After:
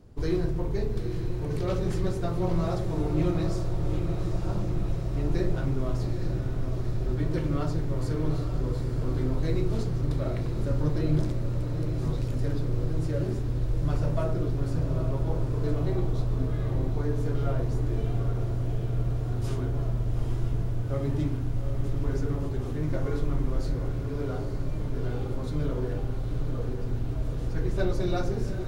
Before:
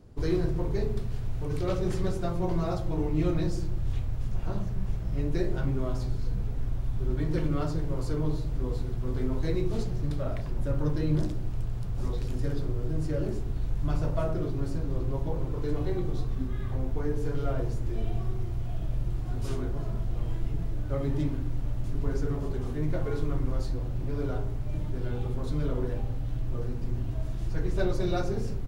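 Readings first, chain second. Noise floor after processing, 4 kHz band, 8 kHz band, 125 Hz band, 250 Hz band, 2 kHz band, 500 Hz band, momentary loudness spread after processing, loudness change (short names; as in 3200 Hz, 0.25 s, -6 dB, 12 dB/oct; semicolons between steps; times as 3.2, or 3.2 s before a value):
-31 dBFS, +1.5 dB, n/a, +3.0 dB, +1.5 dB, +1.5 dB, +1.5 dB, 4 LU, +2.0 dB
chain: diffused feedback echo 0.859 s, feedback 72%, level -7 dB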